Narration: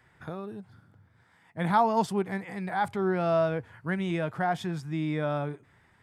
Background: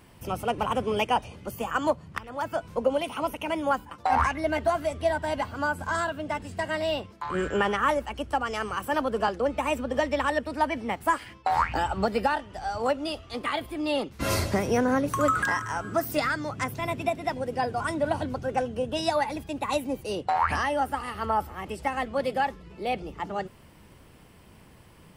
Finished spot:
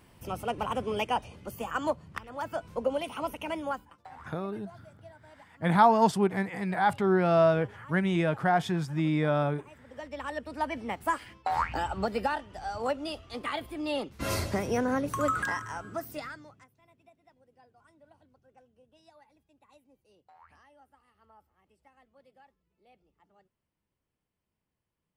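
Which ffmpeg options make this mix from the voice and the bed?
ffmpeg -i stem1.wav -i stem2.wav -filter_complex "[0:a]adelay=4050,volume=3dB[link_01];[1:a]volume=17.5dB,afade=type=out:start_time=3.49:duration=0.61:silence=0.0794328,afade=type=in:start_time=9.83:duration=0.97:silence=0.0794328,afade=type=out:start_time=15.39:duration=1.28:silence=0.0354813[link_02];[link_01][link_02]amix=inputs=2:normalize=0" out.wav

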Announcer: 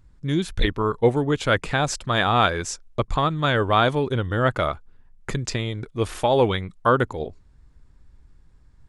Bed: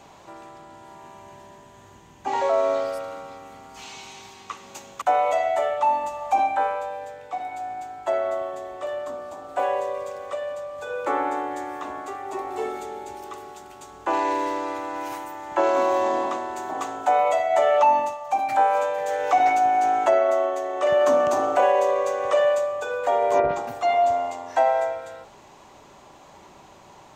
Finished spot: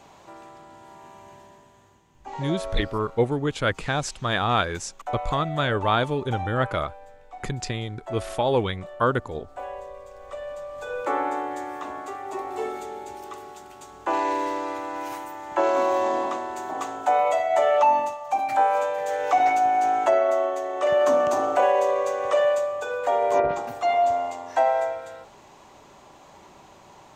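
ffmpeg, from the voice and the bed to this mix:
ffmpeg -i stem1.wav -i stem2.wav -filter_complex "[0:a]adelay=2150,volume=-3.5dB[link_01];[1:a]volume=8.5dB,afade=type=out:start_time=1.3:duration=0.74:silence=0.334965,afade=type=in:start_time=10.09:duration=0.71:silence=0.298538[link_02];[link_01][link_02]amix=inputs=2:normalize=0" out.wav

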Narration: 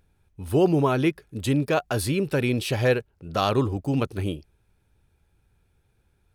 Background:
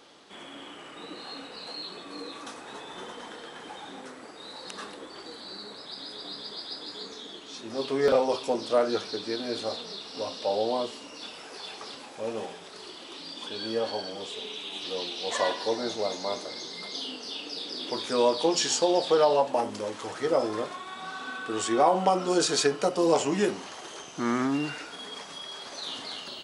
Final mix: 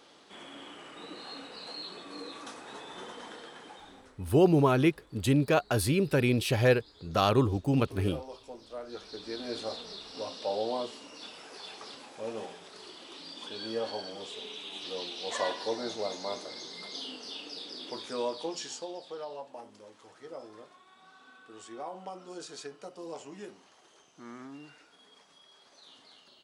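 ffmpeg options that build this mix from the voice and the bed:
ffmpeg -i stem1.wav -i stem2.wav -filter_complex "[0:a]adelay=3800,volume=-2dB[link_01];[1:a]volume=10.5dB,afade=type=out:start_time=3.33:duration=0.88:silence=0.177828,afade=type=in:start_time=8.84:duration=0.67:silence=0.211349,afade=type=out:start_time=17.31:duration=1.7:silence=0.188365[link_02];[link_01][link_02]amix=inputs=2:normalize=0" out.wav

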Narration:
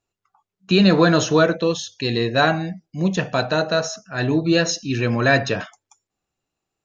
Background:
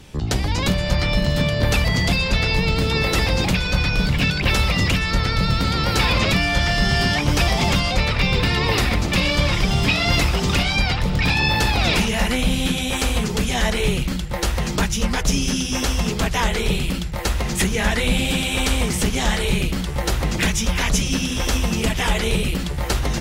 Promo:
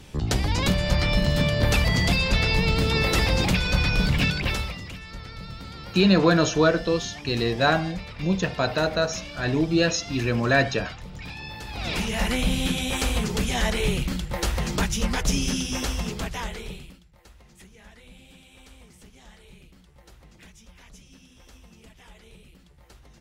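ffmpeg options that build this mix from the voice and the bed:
ffmpeg -i stem1.wav -i stem2.wav -filter_complex "[0:a]adelay=5250,volume=-3.5dB[link_01];[1:a]volume=12.5dB,afade=type=out:start_time=4.19:duration=0.61:silence=0.149624,afade=type=in:start_time=11.67:duration=0.62:silence=0.177828,afade=type=out:start_time=15.47:duration=1.53:silence=0.0501187[link_02];[link_01][link_02]amix=inputs=2:normalize=0" out.wav

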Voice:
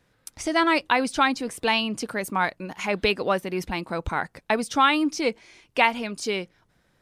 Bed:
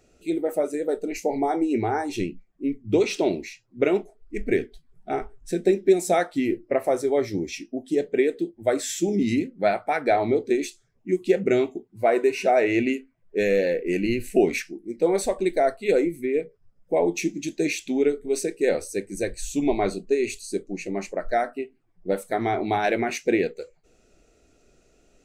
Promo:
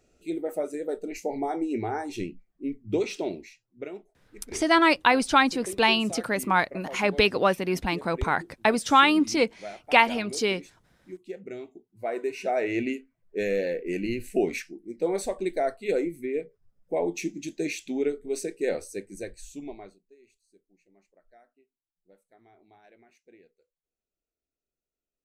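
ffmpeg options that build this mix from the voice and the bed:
ffmpeg -i stem1.wav -i stem2.wav -filter_complex "[0:a]adelay=4150,volume=1.5dB[link_01];[1:a]volume=7dB,afade=type=out:start_time=2.93:duration=0.99:silence=0.237137,afade=type=in:start_time=11.6:duration=1.2:silence=0.237137,afade=type=out:start_time=18.74:duration=1.25:silence=0.0354813[link_02];[link_01][link_02]amix=inputs=2:normalize=0" out.wav

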